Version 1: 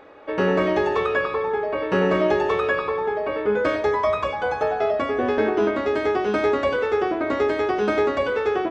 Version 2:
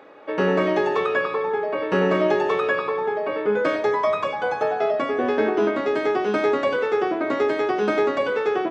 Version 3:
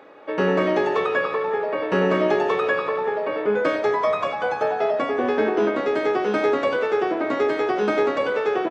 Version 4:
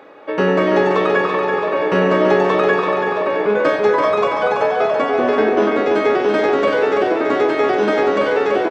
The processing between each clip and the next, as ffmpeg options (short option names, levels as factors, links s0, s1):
-af "highpass=f=130:w=0.5412,highpass=f=130:w=1.3066"
-filter_complex "[0:a]asplit=6[s0][s1][s2][s3][s4][s5];[s1]adelay=181,afreqshift=68,volume=0.178[s6];[s2]adelay=362,afreqshift=136,volume=0.0912[s7];[s3]adelay=543,afreqshift=204,volume=0.0462[s8];[s4]adelay=724,afreqshift=272,volume=0.0237[s9];[s5]adelay=905,afreqshift=340,volume=0.012[s10];[s0][s6][s7][s8][s9][s10]amix=inputs=6:normalize=0"
-af "aecho=1:1:333|666|999|1332|1665|1998|2331:0.562|0.304|0.164|0.0885|0.0478|0.0258|0.0139,volume=1.68"